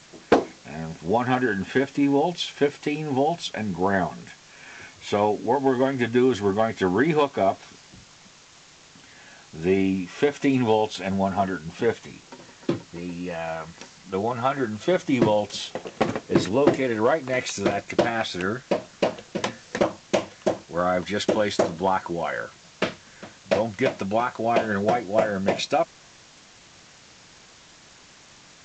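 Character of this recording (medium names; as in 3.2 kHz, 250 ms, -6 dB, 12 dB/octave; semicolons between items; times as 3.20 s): a quantiser's noise floor 8-bit, dither triangular; G.722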